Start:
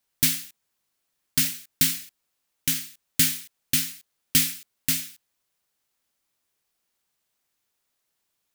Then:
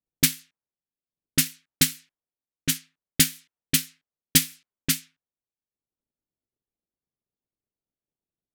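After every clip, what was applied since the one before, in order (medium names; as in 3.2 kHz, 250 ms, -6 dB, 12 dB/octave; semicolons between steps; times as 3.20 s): level-controlled noise filter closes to 400 Hz, open at -21 dBFS; transient shaper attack +9 dB, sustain -7 dB; trim -4 dB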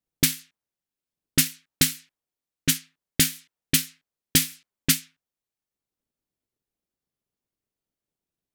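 peak limiter -8.5 dBFS, peak gain reduction 6.5 dB; trim +3.5 dB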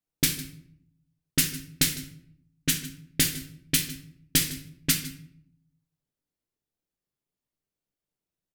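delay 154 ms -18 dB; simulated room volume 120 m³, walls mixed, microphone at 0.48 m; trim -3.5 dB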